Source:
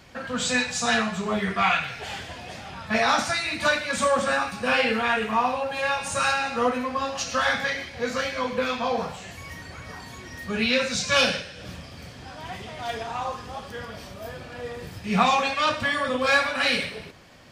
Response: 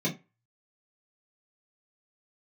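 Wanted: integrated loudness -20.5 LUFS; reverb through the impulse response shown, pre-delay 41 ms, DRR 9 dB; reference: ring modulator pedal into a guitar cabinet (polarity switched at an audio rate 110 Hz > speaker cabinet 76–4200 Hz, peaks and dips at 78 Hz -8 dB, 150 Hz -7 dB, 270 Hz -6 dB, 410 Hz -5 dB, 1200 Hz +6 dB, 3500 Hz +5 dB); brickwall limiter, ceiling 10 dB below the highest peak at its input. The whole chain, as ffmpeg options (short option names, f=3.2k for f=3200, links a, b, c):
-filter_complex "[0:a]alimiter=limit=-16.5dB:level=0:latency=1,asplit=2[a][b];[1:a]atrim=start_sample=2205,adelay=41[c];[b][c]afir=irnorm=-1:irlink=0,volume=-16.5dB[d];[a][d]amix=inputs=2:normalize=0,aeval=exprs='val(0)*sgn(sin(2*PI*110*n/s))':c=same,highpass=76,equalizer=f=78:t=q:w=4:g=-8,equalizer=f=150:t=q:w=4:g=-7,equalizer=f=270:t=q:w=4:g=-6,equalizer=f=410:t=q:w=4:g=-5,equalizer=f=1.2k:t=q:w=4:g=6,equalizer=f=3.5k:t=q:w=4:g=5,lowpass=f=4.2k:w=0.5412,lowpass=f=4.2k:w=1.3066,volume=5dB"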